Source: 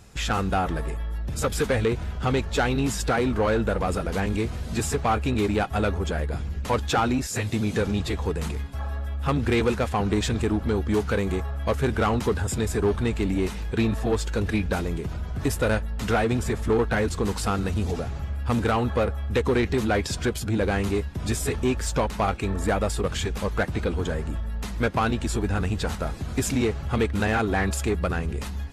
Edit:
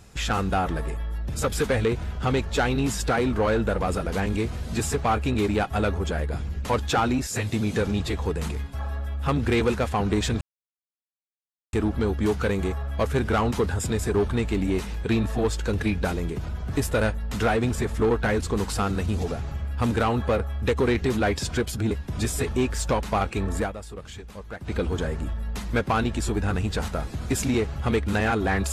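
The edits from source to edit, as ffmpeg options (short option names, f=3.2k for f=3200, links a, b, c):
-filter_complex "[0:a]asplit=5[a][b][c][d][e];[a]atrim=end=10.41,asetpts=PTS-STARTPTS,afade=t=out:st=10.406:d=0.004:c=hsin,apad=pad_dur=1.32[f];[b]atrim=start=10.41:end=20.592,asetpts=PTS-STARTPTS,afade=t=in:d=0.004:c=hsin[g];[c]atrim=start=20.978:end=22.8,asetpts=PTS-STARTPTS,afade=t=out:st=1.662:d=0.16:silence=0.237137[h];[d]atrim=start=22.8:end=23.67,asetpts=PTS-STARTPTS,volume=-12.5dB[i];[e]atrim=start=23.67,asetpts=PTS-STARTPTS,afade=t=in:d=0.16:silence=0.237137[j];[f][g]concat=n=2:v=0:a=1[k];[h][i][j]concat=n=3:v=0:a=1[l];[k][l]acrossfade=d=0.004:c1=hsin:c2=hsin"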